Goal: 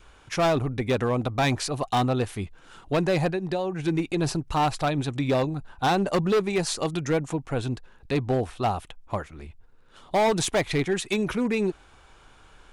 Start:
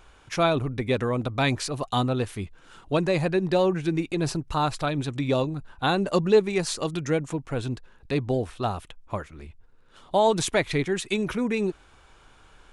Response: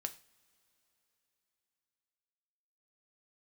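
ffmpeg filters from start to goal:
-filter_complex "[0:a]adynamicequalizer=threshold=0.00891:dfrequency=770:dqfactor=3.9:tfrequency=770:tqfactor=3.9:attack=5:release=100:ratio=0.375:range=3:mode=boostabove:tftype=bell,asplit=3[s0][s1][s2];[s0]afade=t=out:st=3.3:d=0.02[s3];[s1]acompressor=threshold=0.0501:ratio=6,afade=t=in:st=3.3:d=0.02,afade=t=out:st=3.78:d=0.02[s4];[s2]afade=t=in:st=3.78:d=0.02[s5];[s3][s4][s5]amix=inputs=3:normalize=0,asoftclip=type=hard:threshold=0.112,volume=1.12"

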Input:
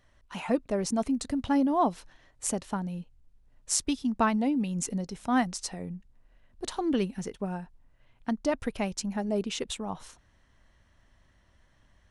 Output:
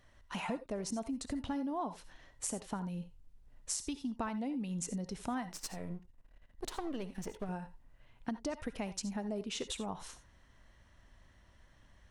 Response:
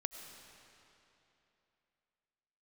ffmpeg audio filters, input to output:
-filter_complex "[0:a]asettb=1/sr,asplit=3[s0][s1][s2];[s0]atrim=end=5.494[s3];[s1]atrim=start=5.49:end=7.49,asetpts=PTS-STARTPTS,afade=t=in:d=0.004:c=qsin,afade=t=out:st=1.996:d=0.004:c=qsin,aeval=exprs='if(lt(val(0),0),0.251*val(0),val(0))':c=same[s4];[s2]atrim=start=7.486[s5];[s3][s4]acrossfade=d=0.004:c1=hsin:c2=qsin[s6];[s6][s5]acrossfade=d=0.004:c1=qsin:c2=hsin,acompressor=threshold=0.0158:ratio=6[s7];[1:a]atrim=start_sample=2205,atrim=end_sample=6174,asetrate=66150,aresample=44100[s8];[s7][s8]afir=irnorm=-1:irlink=0,volume=2"

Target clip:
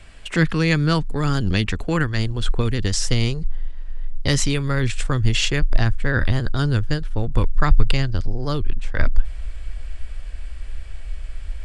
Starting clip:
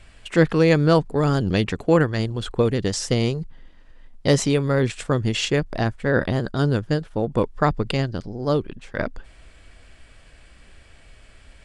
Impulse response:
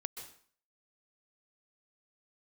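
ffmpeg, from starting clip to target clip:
-filter_complex "[0:a]asubboost=boost=11:cutoff=53,acrossover=split=280|1100[s0][s1][s2];[s1]acompressor=threshold=0.0141:ratio=6[s3];[s0][s3][s2]amix=inputs=3:normalize=0,volume=1.5"

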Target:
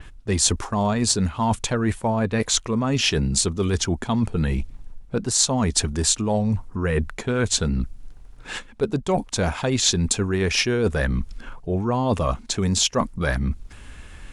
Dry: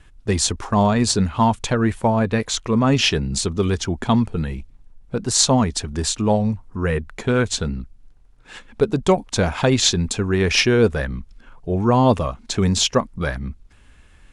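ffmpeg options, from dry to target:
-af "areverse,acompressor=threshold=0.0355:ratio=6,areverse,adynamicequalizer=threshold=0.00447:dfrequency=5800:dqfactor=0.7:tfrequency=5800:tqfactor=0.7:attack=5:release=100:ratio=0.375:range=3:mode=boostabove:tftype=highshelf,volume=2.82"

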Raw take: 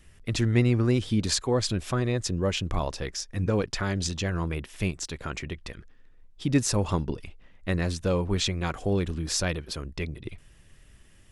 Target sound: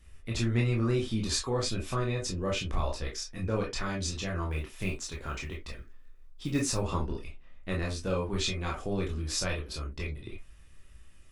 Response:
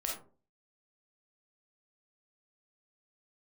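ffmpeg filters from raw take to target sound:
-filter_complex "[0:a]asettb=1/sr,asplit=3[s0][s1][s2];[s0]atrim=end=4.514[s3];[s1]atrim=start=4.51:end=6.78,asetpts=PTS-STARTPTS,afade=t=in:d=0.004:c=qsin,afade=t=out:st=2.266:d=0.004:c=qsin,acrusher=bits=8:mode=log:mix=0:aa=0.000001[s4];[s2]atrim=start=6.776[s5];[s3][s4]acrossfade=d=0.004:c1=hsin:c2=qsin[s6];[s6][s5]acrossfade=d=0.004:c1=qsin:c2=hsin[s7];[1:a]atrim=start_sample=2205,afade=t=out:st=0.24:d=0.01,atrim=end_sample=11025,asetrate=83790,aresample=44100[s8];[s7][s8]afir=irnorm=-1:irlink=0"

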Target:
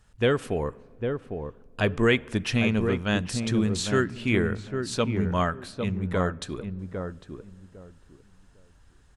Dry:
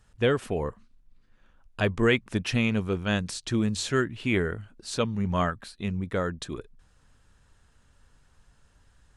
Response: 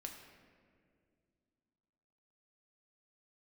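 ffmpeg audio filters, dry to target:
-filter_complex "[0:a]asplit=2[s0][s1];[s1]adelay=803,lowpass=f=870:p=1,volume=0.562,asplit=2[s2][s3];[s3]adelay=803,lowpass=f=870:p=1,volume=0.22,asplit=2[s4][s5];[s5]adelay=803,lowpass=f=870:p=1,volume=0.22[s6];[s0][s2][s4][s6]amix=inputs=4:normalize=0,asplit=2[s7][s8];[1:a]atrim=start_sample=2205[s9];[s8][s9]afir=irnorm=-1:irlink=0,volume=0.224[s10];[s7][s10]amix=inputs=2:normalize=0"

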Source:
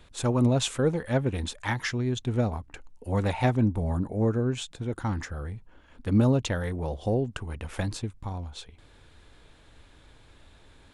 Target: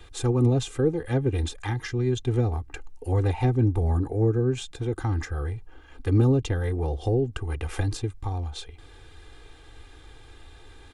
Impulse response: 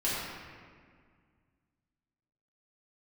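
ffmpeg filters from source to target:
-filter_complex "[0:a]aecho=1:1:2.5:0.83,acrossover=split=410[s0][s1];[s1]acompressor=threshold=0.0141:ratio=6[s2];[s0][s2]amix=inputs=2:normalize=0,volume=1.41"

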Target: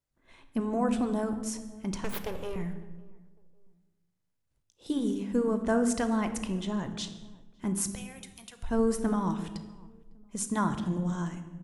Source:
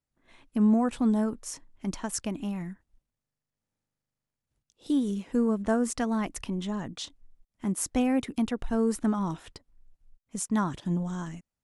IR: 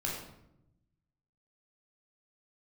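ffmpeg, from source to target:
-filter_complex "[0:a]asettb=1/sr,asplit=3[s0][s1][s2];[s0]atrim=end=2.044[s3];[s1]atrim=start=2.04:end=2.56,asetpts=PTS-STARTPTS,afade=t=in:d=0.004:c=qsin,afade=t=out:st=0.516:d=0.004:c=qsin,aeval=exprs='abs(val(0))':c=same[s4];[s2]atrim=start=2.556[s5];[s3][s4]acrossfade=d=0.004:c1=hsin:c2=qsin[s6];[s6][s5]acrossfade=d=0.004:c1=qsin:c2=hsin,asettb=1/sr,asplit=3[s7][s8][s9];[s7]atrim=end=7.954[s10];[s8]atrim=start=7.95:end=8.63,asetpts=PTS-STARTPTS,afade=t=in:d=0.004:c=qsin,afade=t=out:st=0.676:d=0.004:c=qsin,aderivative[s11];[s9]atrim=start=8.626[s12];[s10][s11]acrossfade=d=0.004:c1=hsin:c2=qsin[s13];[s13][s12]acrossfade=d=0.004:c1=qsin:c2=hsin,asplit=2[s14][s15];[s15]adelay=553,lowpass=f=860:p=1,volume=0.075,asplit=2[s16][s17];[s17]adelay=553,lowpass=f=860:p=1,volume=0.33[s18];[s14][s16][s18]amix=inputs=3:normalize=0,asplit=2[s19][s20];[1:a]atrim=start_sample=2205,afade=t=out:st=0.39:d=0.01,atrim=end_sample=17640,asetrate=29106,aresample=44100[s21];[s20][s21]afir=irnorm=-1:irlink=0,volume=0.266[s22];[s19][s22]amix=inputs=2:normalize=0,afftfilt=real='re*lt(hypot(re,im),1)':imag='im*lt(hypot(re,im),1)':win_size=1024:overlap=0.75,volume=0.794"

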